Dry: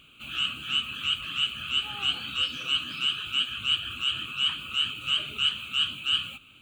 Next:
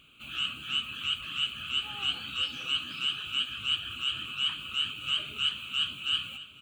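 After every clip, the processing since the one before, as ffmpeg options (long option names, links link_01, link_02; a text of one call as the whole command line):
ffmpeg -i in.wav -af "aecho=1:1:598|1196|1794|2392|2990:0.158|0.0888|0.0497|0.0278|0.0156,volume=-3.5dB" out.wav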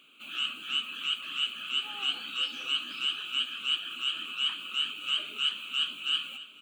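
ffmpeg -i in.wav -af "highpass=frequency=230:width=0.5412,highpass=frequency=230:width=1.3066" out.wav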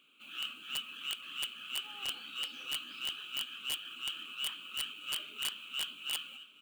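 ffmpeg -i in.wav -af "bandreject=frequency=660:width=12,acrusher=bits=5:mode=log:mix=0:aa=0.000001,aeval=exprs='(mod(8.91*val(0)+1,2)-1)/8.91':channel_layout=same,volume=-7.5dB" out.wav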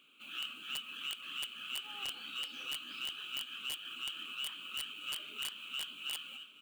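ffmpeg -i in.wav -af "acompressor=threshold=-38dB:ratio=6,volume=1.5dB" out.wav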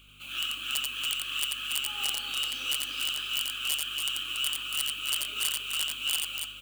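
ffmpeg -i in.wav -filter_complex "[0:a]bass=frequency=250:gain=-9,treble=frequency=4000:gain=8,aeval=exprs='val(0)+0.000631*(sin(2*PI*50*n/s)+sin(2*PI*2*50*n/s)/2+sin(2*PI*3*50*n/s)/3+sin(2*PI*4*50*n/s)/4+sin(2*PI*5*50*n/s)/5)':channel_layout=same,asplit=2[link_01][link_02];[link_02]aecho=0:1:87.46|282.8:0.708|0.501[link_03];[link_01][link_03]amix=inputs=2:normalize=0,volume=5.5dB" out.wav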